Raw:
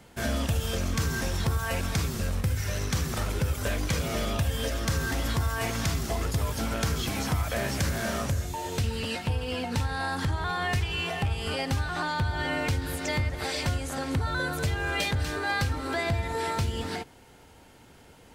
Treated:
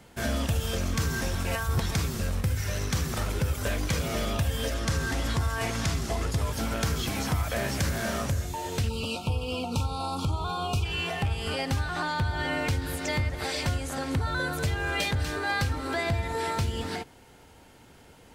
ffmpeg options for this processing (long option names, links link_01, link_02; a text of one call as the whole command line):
ffmpeg -i in.wav -filter_complex "[0:a]asettb=1/sr,asplit=3[link_01][link_02][link_03];[link_01]atrim=end=4.744[link_04];[link_02]atrim=start=4.74:end=6.53,asetpts=PTS-STARTPTS,afade=type=in:duration=0.004:curve=qsin,afade=type=out:start_time=1.786:duration=0.004:curve=qsin,lowpass=11000[link_05];[link_03]atrim=start=6.526[link_06];[link_04][link_05]acrossfade=duration=0.004:curve1=hsin:curve2=qsin[link_07];[link_07][link_06]acrossfade=duration=0.004:curve1=qsin:curve2=hsin,asplit=3[link_08][link_09][link_10];[link_08]afade=type=out:start_time=8.88:duration=0.02[link_11];[link_09]asuperstop=centerf=1800:order=20:qfactor=2,afade=type=in:start_time=8.88:duration=0.02,afade=type=out:start_time=10.84:duration=0.02[link_12];[link_10]afade=type=in:start_time=10.84:duration=0.02[link_13];[link_11][link_12][link_13]amix=inputs=3:normalize=0,asplit=3[link_14][link_15][link_16];[link_14]atrim=end=1.352[link_17];[link_15]atrim=start=1.348:end=1.912,asetpts=PTS-STARTPTS,areverse[link_18];[link_16]atrim=start=1.908[link_19];[link_17][link_18]acrossfade=duration=0.004:curve1=hsin:curve2=hsin[link_20];[link_20][link_19]acrossfade=duration=0.004:curve1=hsin:curve2=hsin" out.wav